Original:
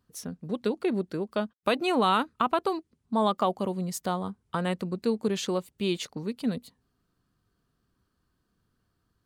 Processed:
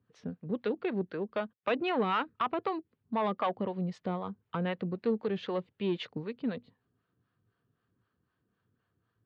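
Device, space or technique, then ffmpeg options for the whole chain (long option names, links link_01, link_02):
guitar amplifier with harmonic tremolo: -filter_complex "[0:a]acrossover=split=510[link_01][link_02];[link_01]aeval=exprs='val(0)*(1-0.7/2+0.7/2*cos(2*PI*3.9*n/s))':channel_layout=same[link_03];[link_02]aeval=exprs='val(0)*(1-0.7/2-0.7/2*cos(2*PI*3.9*n/s))':channel_layout=same[link_04];[link_03][link_04]amix=inputs=2:normalize=0,asoftclip=type=tanh:threshold=-23dB,highpass=98,equalizer=frequency=110:width_type=q:width=4:gain=8,equalizer=frequency=470:width_type=q:width=4:gain=4,equalizer=frequency=1700:width_type=q:width=4:gain=3,lowpass=frequency=3400:width=0.5412,lowpass=frequency=3400:width=1.3066"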